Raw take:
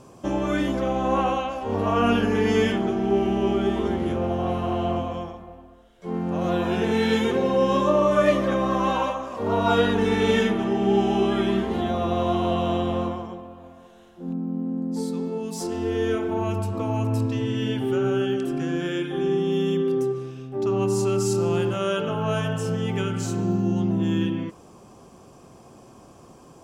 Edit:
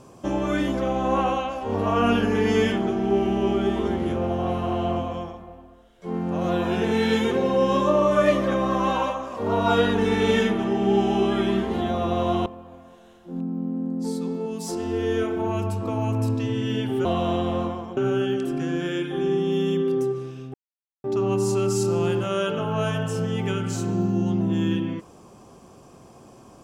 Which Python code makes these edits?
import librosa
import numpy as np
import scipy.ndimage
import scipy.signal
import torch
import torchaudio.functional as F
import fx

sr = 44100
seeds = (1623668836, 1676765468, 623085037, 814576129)

y = fx.edit(x, sr, fx.move(start_s=12.46, length_s=0.92, to_s=17.97),
    fx.insert_silence(at_s=20.54, length_s=0.5), tone=tone)